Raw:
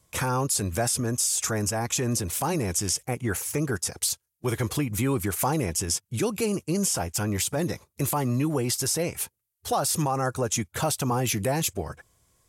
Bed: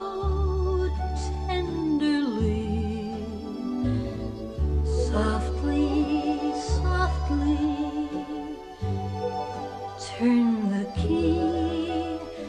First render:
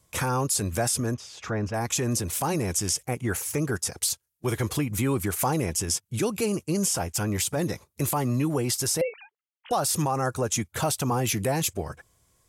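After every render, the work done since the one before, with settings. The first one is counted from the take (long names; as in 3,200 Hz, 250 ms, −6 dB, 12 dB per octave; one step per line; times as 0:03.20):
0:01.14–0:01.74: high-frequency loss of the air 260 metres
0:09.01–0:09.71: three sine waves on the formant tracks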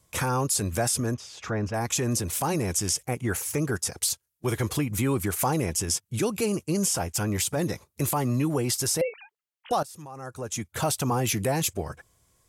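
0:09.83–0:10.86: fade in quadratic, from −19.5 dB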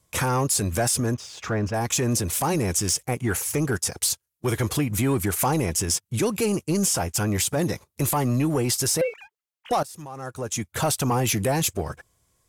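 leveller curve on the samples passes 1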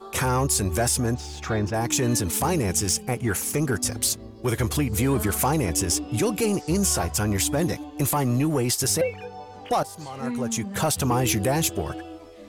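mix in bed −9 dB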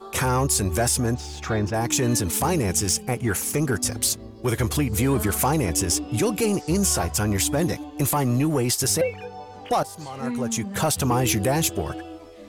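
level +1 dB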